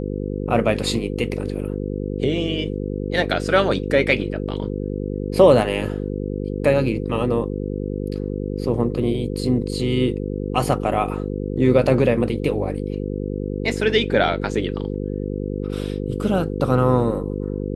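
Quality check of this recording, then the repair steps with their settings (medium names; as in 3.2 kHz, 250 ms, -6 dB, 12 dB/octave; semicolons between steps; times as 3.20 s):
buzz 50 Hz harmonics 10 -26 dBFS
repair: de-hum 50 Hz, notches 10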